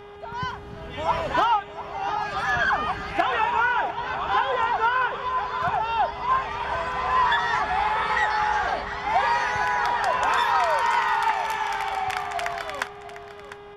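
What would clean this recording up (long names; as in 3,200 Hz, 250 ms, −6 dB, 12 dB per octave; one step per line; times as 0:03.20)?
clipped peaks rebuilt −11.5 dBFS
hum removal 408.7 Hz, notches 9
echo removal 700 ms −13.5 dB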